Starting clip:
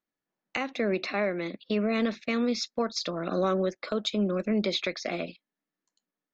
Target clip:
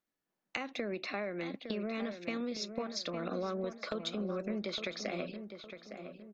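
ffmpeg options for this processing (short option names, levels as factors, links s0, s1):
-filter_complex "[0:a]acompressor=threshold=0.0178:ratio=5,asplit=2[s0][s1];[s1]adelay=860,lowpass=f=2300:p=1,volume=0.376,asplit=2[s2][s3];[s3]adelay=860,lowpass=f=2300:p=1,volume=0.42,asplit=2[s4][s5];[s5]adelay=860,lowpass=f=2300:p=1,volume=0.42,asplit=2[s6][s7];[s7]adelay=860,lowpass=f=2300:p=1,volume=0.42,asplit=2[s8][s9];[s9]adelay=860,lowpass=f=2300:p=1,volume=0.42[s10];[s2][s4][s6][s8][s10]amix=inputs=5:normalize=0[s11];[s0][s11]amix=inputs=2:normalize=0"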